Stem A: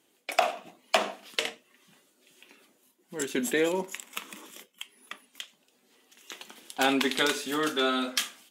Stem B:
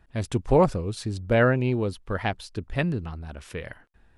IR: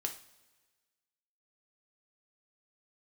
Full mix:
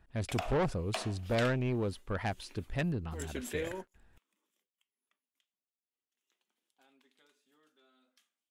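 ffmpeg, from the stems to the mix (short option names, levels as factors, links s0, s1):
-filter_complex "[0:a]agate=range=0.0224:threshold=0.00126:ratio=3:detection=peak,acompressor=threshold=0.00355:ratio=1.5,volume=0.668[s0];[1:a]asoftclip=type=tanh:threshold=0.0944,volume=0.562,asplit=2[s1][s2];[s2]apad=whole_len=374969[s3];[s0][s3]sidechaingate=range=0.0316:threshold=0.00251:ratio=16:detection=peak[s4];[s4][s1]amix=inputs=2:normalize=0"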